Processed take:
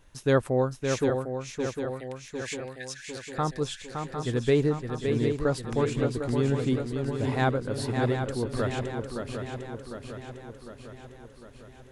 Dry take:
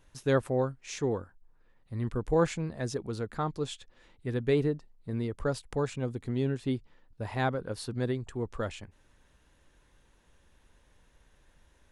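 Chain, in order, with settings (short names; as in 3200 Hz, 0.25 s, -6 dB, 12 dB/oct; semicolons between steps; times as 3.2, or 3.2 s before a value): 1.1–3.38 steep high-pass 1600 Hz 96 dB/oct; swung echo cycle 0.753 s, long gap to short 3:1, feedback 56%, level -6 dB; gain +3.5 dB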